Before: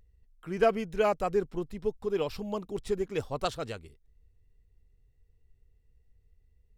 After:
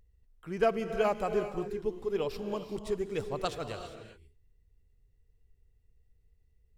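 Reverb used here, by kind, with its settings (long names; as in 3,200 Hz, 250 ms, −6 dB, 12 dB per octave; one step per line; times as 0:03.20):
reverb whose tail is shaped and stops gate 420 ms rising, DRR 8 dB
level −2.5 dB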